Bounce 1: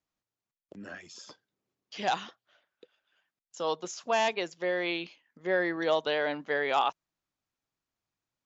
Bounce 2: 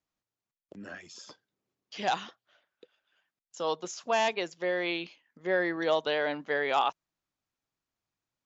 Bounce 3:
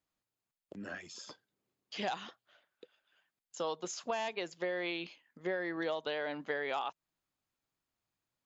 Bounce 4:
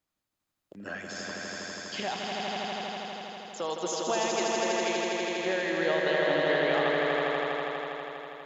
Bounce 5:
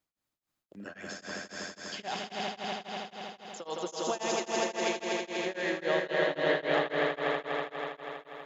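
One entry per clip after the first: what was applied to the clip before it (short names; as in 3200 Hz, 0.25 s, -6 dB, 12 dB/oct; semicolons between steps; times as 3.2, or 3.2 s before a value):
nothing audible
notch 5700 Hz, Q 13; compressor 10:1, threshold -32 dBFS, peak gain reduction 11.5 dB
random-step tremolo 3.5 Hz; on a send: swelling echo 81 ms, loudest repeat 5, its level -4 dB; on the sum: gain +6 dB
notches 50/100 Hz; beating tremolo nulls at 3.7 Hz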